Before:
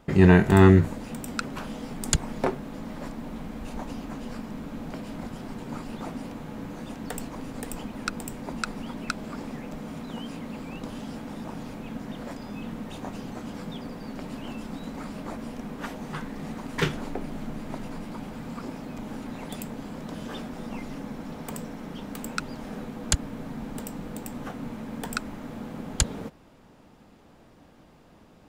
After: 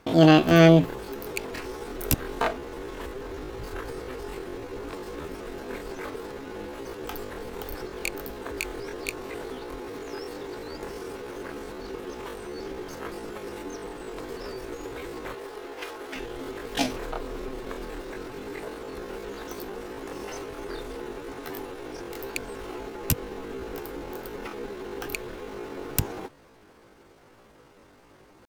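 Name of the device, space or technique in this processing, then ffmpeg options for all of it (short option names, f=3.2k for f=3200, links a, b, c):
chipmunk voice: -filter_complex "[0:a]asetrate=76340,aresample=44100,atempo=0.577676,asettb=1/sr,asplit=3[a][b][c];[a]atrim=end=15.344[d];[b]atrim=start=15.34:end=16.16,asetpts=PTS-STARTPTS,afade=t=in:d=0.004:c=qsin,afade=t=out:st=0.816:d=0.004:c=qsin,bass=f=250:g=-13,treble=f=4k:g=-1[e];[c]atrim=start=16.156[f];[d][e]acrossfade=d=0.004:c1=hsin:c2=qsin[g];[g][f]acrossfade=d=0.004:c1=qsin:c2=hsin"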